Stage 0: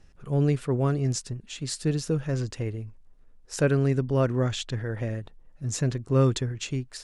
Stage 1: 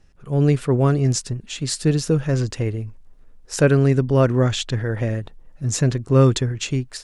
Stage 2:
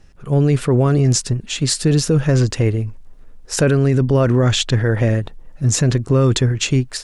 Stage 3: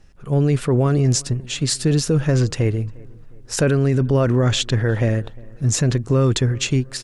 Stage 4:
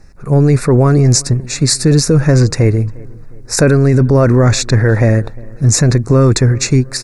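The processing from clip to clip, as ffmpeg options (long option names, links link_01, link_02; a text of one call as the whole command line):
ffmpeg -i in.wav -af "dynaudnorm=framelen=240:gausssize=3:maxgain=7.5dB" out.wav
ffmpeg -i in.wav -af "alimiter=limit=-14dB:level=0:latency=1:release=16,volume=7dB" out.wav
ffmpeg -i in.wav -filter_complex "[0:a]asplit=2[link_01][link_02];[link_02]adelay=354,lowpass=frequency=2000:poles=1,volume=-24dB,asplit=2[link_03][link_04];[link_04]adelay=354,lowpass=frequency=2000:poles=1,volume=0.47,asplit=2[link_05][link_06];[link_06]adelay=354,lowpass=frequency=2000:poles=1,volume=0.47[link_07];[link_01][link_03][link_05][link_07]amix=inputs=4:normalize=0,volume=-2.5dB" out.wav
ffmpeg -i in.wav -af "apsyclip=12.5dB,asuperstop=centerf=3100:order=4:qfactor=2.1,volume=-3.5dB" out.wav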